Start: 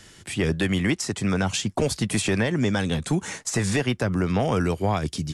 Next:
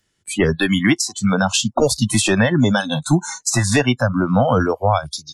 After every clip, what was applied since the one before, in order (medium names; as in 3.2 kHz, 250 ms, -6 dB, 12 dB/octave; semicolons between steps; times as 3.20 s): spectral noise reduction 29 dB; trim +9 dB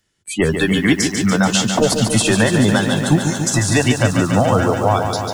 bit-crushed delay 144 ms, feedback 80%, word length 7-bit, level -7 dB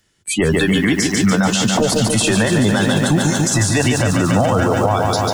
peak limiter -13 dBFS, peak gain reduction 11 dB; trim +6 dB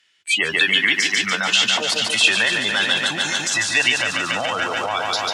band-pass filter 2.7 kHz, Q 1.8; trim +8.5 dB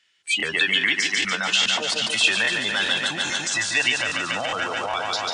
crackling interface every 0.41 s, samples 1024, repeat, from 0.38 s; trim -3.5 dB; WMA 128 kbps 22.05 kHz